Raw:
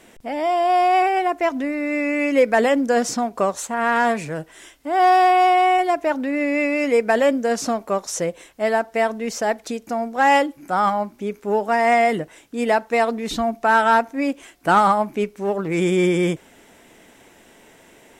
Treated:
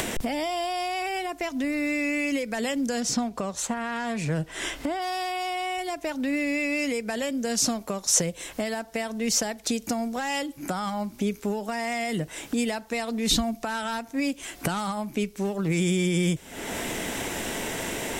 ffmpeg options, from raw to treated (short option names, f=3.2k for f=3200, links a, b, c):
-filter_complex "[0:a]asettb=1/sr,asplit=3[a][b][c];[a]atrim=end=3.004[d];[b]atrim=start=3:end=5.02,asetpts=PTS-STARTPTS,afade=t=in:d=0.004:c=qsin,afade=t=out:st=2.016:d=0.004:c=qsin,lowpass=f=3.8k:p=1[e];[c]atrim=start=5.016[f];[d][e]acrossfade=d=0.004:c1=hsin:c2=qsin[g];[g][f]acrossfade=d=0.004:c1=qsin:c2=hsin,acompressor=mode=upward:threshold=-25dB:ratio=2.5,alimiter=limit=-16.5dB:level=0:latency=1:release=263,acrossover=split=180|3000[h][i][j];[i]acompressor=threshold=-39dB:ratio=6[k];[h][k][j]amix=inputs=3:normalize=0,volume=8.5dB"